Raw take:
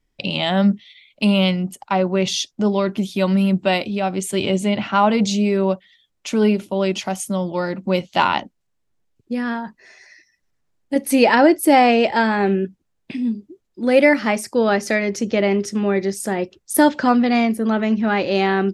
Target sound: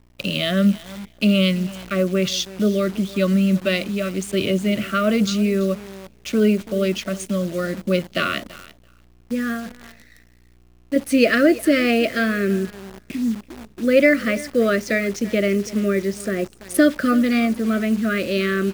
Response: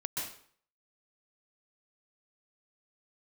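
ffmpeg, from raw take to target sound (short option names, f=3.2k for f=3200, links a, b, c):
-filter_complex "[0:a]adynamicequalizer=threshold=0.0398:dfrequency=580:dqfactor=0.74:tfrequency=580:tqfactor=0.74:attack=5:release=100:ratio=0.375:range=2:mode=cutabove:tftype=bell,acrossover=split=110|2600[a][b][c];[c]adynamicsmooth=sensitivity=4:basefreq=4.6k[d];[a][b][d]amix=inputs=3:normalize=0,aeval=exprs='val(0)+0.00316*(sin(2*PI*60*n/s)+sin(2*PI*2*60*n/s)/2+sin(2*PI*3*60*n/s)/3+sin(2*PI*4*60*n/s)/4+sin(2*PI*5*60*n/s)/5)':c=same,asuperstop=centerf=880:order=20:qfactor=2.2,aecho=1:1:334|668:0.112|0.0191,acrusher=bits=7:dc=4:mix=0:aa=0.000001"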